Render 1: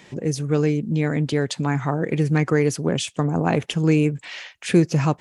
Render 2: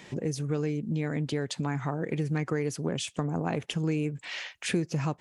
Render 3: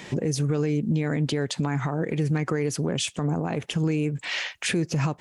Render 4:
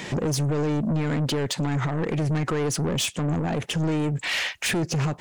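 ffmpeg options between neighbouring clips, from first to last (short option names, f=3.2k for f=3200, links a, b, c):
-af "acompressor=threshold=-29dB:ratio=2.5,volume=-1dB"
-af "alimiter=limit=-24dB:level=0:latency=1:release=85,volume=8dB"
-af "asoftclip=type=tanh:threshold=-27.5dB,volume=6.5dB"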